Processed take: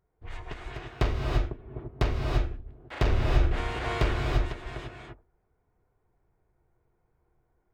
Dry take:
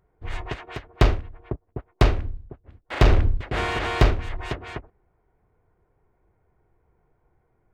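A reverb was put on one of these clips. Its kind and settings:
reverb whose tail is shaped and stops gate 370 ms rising, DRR −0.5 dB
level −9 dB

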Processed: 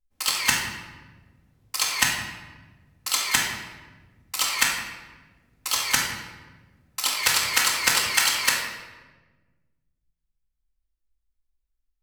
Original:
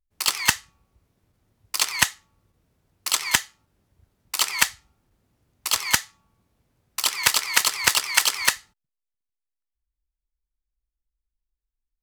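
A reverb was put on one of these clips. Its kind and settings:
rectangular room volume 920 cubic metres, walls mixed, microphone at 2.1 metres
level −4 dB

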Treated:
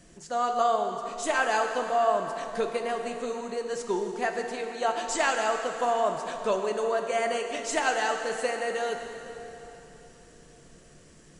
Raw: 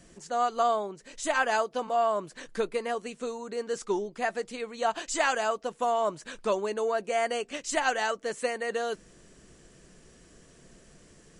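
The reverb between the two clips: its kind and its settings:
dense smooth reverb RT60 3.5 s, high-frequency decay 0.85×, DRR 4 dB

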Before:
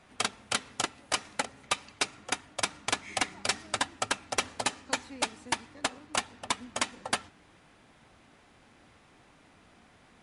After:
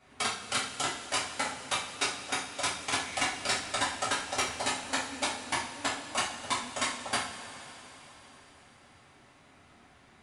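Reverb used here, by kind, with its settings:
coupled-rooms reverb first 0.4 s, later 4.4 s, from −18 dB, DRR −8 dB
level −7.5 dB

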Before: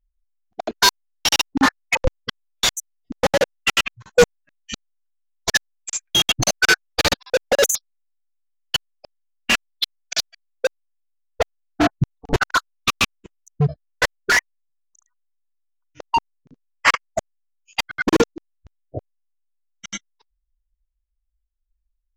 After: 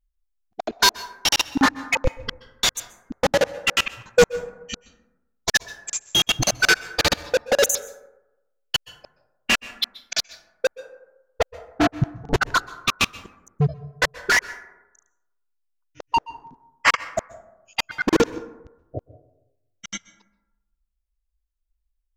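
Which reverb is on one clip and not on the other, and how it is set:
dense smooth reverb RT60 0.95 s, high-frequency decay 0.35×, pre-delay 115 ms, DRR 17 dB
level −1.5 dB

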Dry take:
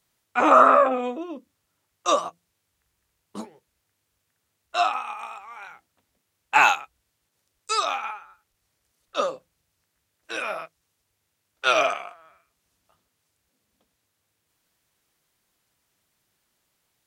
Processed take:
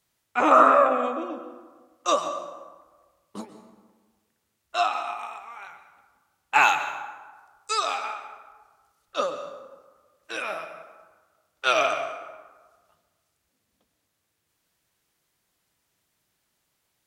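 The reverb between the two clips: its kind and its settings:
dense smooth reverb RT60 1.4 s, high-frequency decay 0.55×, pre-delay 110 ms, DRR 9.5 dB
level −1.5 dB

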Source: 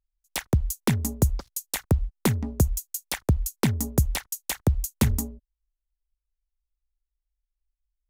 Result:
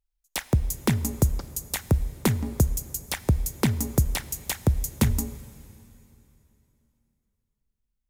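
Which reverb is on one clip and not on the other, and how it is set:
dense smooth reverb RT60 3.1 s, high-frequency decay 0.95×, DRR 15 dB

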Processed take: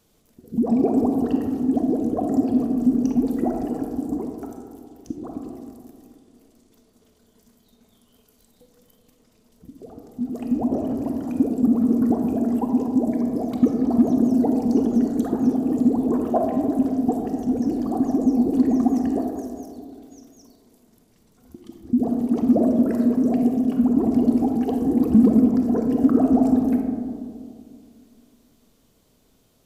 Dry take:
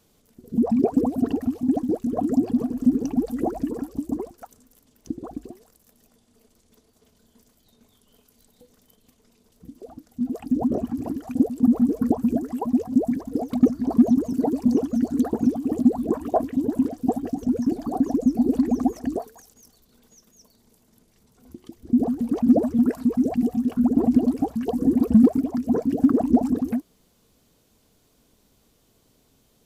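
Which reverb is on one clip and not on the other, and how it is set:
comb and all-pass reverb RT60 2.3 s, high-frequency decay 0.25×, pre-delay 5 ms, DRR 2.5 dB
level −1 dB

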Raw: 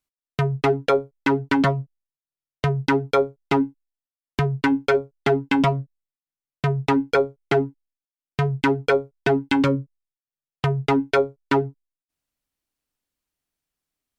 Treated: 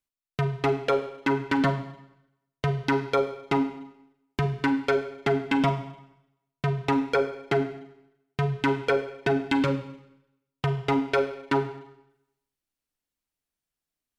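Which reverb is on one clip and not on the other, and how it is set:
four-comb reverb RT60 0.84 s, combs from 33 ms, DRR 8.5 dB
level −4.5 dB

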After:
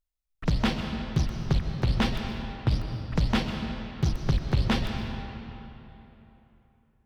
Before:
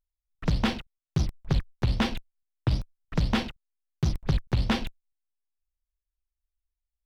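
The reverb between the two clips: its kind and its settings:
comb and all-pass reverb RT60 3.3 s, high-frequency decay 0.7×, pre-delay 85 ms, DRR 4.5 dB

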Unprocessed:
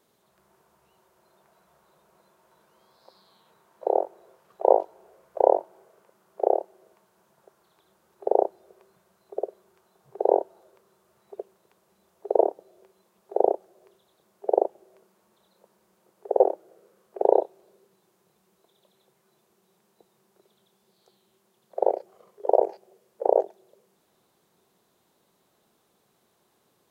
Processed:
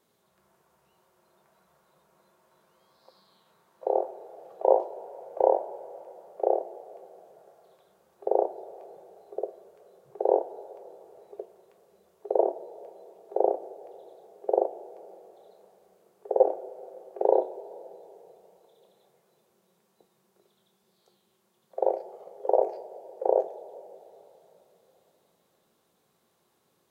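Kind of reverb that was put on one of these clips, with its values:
coupled-rooms reverb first 0.26 s, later 3.4 s, from −18 dB, DRR 6.5 dB
level −3.5 dB

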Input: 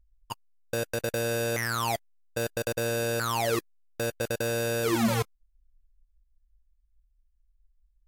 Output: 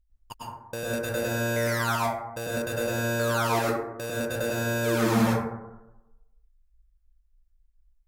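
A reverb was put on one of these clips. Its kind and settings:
dense smooth reverb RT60 1 s, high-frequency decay 0.3×, pre-delay 90 ms, DRR −7 dB
level −5 dB

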